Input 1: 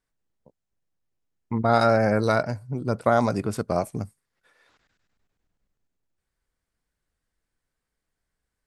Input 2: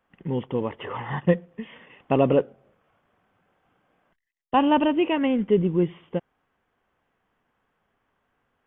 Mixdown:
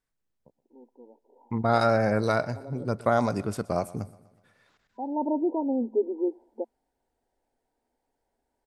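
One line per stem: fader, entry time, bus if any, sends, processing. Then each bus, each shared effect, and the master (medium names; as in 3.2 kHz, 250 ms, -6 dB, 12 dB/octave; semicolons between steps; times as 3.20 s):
-3.0 dB, 0.00 s, no send, echo send -20.5 dB, none
-4.0 dB, 0.45 s, no send, no echo send, FFT band-pass 220–990 Hz; auto duck -20 dB, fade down 0.80 s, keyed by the first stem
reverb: none
echo: feedback delay 123 ms, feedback 52%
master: none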